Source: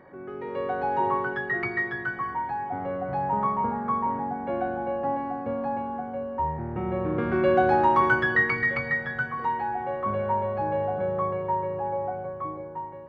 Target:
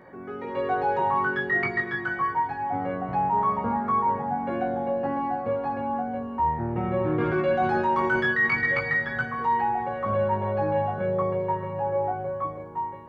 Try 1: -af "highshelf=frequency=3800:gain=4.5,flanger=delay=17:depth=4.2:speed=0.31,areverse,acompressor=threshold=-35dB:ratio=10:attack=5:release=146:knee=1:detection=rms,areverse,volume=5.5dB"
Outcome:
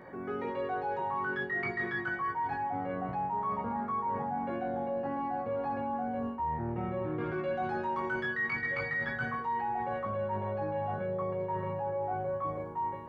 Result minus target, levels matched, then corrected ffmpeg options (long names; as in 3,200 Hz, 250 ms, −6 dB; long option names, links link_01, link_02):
downward compressor: peak gain reduction +10 dB
-af "highshelf=frequency=3800:gain=4.5,flanger=delay=17:depth=4.2:speed=0.31,areverse,acompressor=threshold=-24dB:ratio=10:attack=5:release=146:knee=1:detection=rms,areverse,volume=5.5dB"